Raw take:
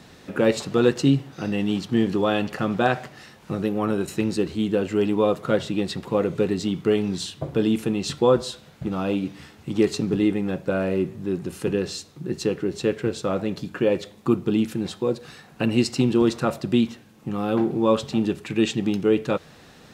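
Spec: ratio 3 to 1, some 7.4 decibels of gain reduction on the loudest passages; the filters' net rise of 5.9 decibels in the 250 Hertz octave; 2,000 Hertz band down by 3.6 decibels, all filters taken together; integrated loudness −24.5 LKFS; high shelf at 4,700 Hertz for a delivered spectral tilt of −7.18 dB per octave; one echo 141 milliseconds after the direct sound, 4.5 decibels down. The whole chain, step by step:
parametric band 250 Hz +7.5 dB
parametric band 2,000 Hz −4.5 dB
high-shelf EQ 4,700 Hz −4 dB
downward compressor 3 to 1, threshold −19 dBFS
single-tap delay 141 ms −4.5 dB
level −1.5 dB

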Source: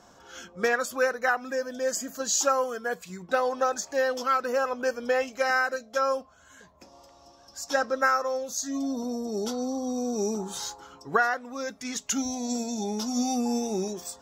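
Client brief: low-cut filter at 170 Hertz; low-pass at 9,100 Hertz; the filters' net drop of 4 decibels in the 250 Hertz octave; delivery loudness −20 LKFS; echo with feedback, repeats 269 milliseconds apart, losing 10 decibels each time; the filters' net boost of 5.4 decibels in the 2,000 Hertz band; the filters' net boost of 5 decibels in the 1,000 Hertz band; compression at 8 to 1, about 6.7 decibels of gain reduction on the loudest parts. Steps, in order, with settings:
high-pass filter 170 Hz
low-pass filter 9,100 Hz
parametric band 250 Hz −3.5 dB
parametric band 1,000 Hz +5.5 dB
parametric band 2,000 Hz +5 dB
downward compressor 8 to 1, threshold −21 dBFS
repeating echo 269 ms, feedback 32%, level −10 dB
level +8 dB

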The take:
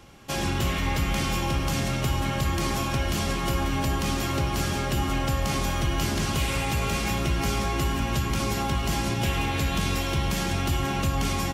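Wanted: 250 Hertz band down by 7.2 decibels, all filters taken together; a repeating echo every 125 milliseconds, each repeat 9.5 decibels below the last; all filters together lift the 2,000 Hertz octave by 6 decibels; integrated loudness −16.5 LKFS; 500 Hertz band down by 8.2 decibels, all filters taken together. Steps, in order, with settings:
parametric band 250 Hz −8.5 dB
parametric band 500 Hz −8.5 dB
parametric band 2,000 Hz +8 dB
repeating echo 125 ms, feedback 33%, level −9.5 dB
level +8.5 dB

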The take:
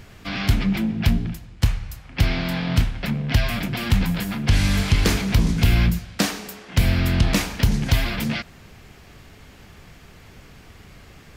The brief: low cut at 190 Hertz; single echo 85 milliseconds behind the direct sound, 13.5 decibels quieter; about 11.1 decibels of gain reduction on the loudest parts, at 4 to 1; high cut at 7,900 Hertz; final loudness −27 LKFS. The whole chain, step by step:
high-pass filter 190 Hz
low-pass filter 7,900 Hz
downward compressor 4 to 1, threshold −31 dBFS
single-tap delay 85 ms −13.5 dB
level +6.5 dB

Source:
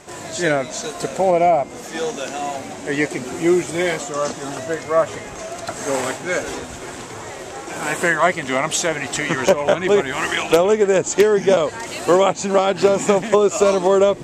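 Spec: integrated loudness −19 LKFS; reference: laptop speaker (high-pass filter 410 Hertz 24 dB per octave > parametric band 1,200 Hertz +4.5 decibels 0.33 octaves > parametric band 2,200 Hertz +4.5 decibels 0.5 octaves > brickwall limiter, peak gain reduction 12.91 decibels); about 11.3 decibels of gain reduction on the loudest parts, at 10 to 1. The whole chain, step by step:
downward compressor 10 to 1, threshold −21 dBFS
high-pass filter 410 Hz 24 dB per octave
parametric band 1,200 Hz +4.5 dB 0.33 octaves
parametric band 2,200 Hz +4.5 dB 0.5 octaves
level +11.5 dB
brickwall limiter −10.5 dBFS

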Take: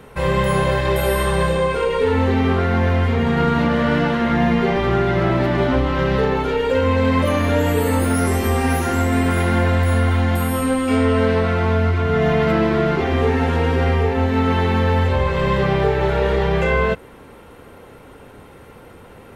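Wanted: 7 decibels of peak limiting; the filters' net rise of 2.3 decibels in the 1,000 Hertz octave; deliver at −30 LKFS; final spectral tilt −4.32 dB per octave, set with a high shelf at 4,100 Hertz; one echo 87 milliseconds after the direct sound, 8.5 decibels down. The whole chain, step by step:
parametric band 1,000 Hz +3.5 dB
high-shelf EQ 4,100 Hz −8 dB
brickwall limiter −11.5 dBFS
single-tap delay 87 ms −8.5 dB
level −10 dB

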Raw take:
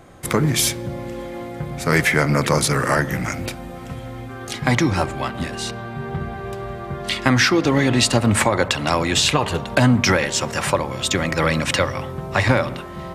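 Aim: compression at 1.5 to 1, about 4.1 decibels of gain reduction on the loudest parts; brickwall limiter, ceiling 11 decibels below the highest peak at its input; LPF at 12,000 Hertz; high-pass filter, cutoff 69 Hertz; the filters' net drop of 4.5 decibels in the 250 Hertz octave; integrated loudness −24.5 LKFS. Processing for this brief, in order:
high-pass filter 69 Hz
low-pass filter 12,000 Hz
parametric band 250 Hz −6 dB
downward compressor 1.5 to 1, threshold −25 dBFS
level +3 dB
brickwall limiter −13 dBFS

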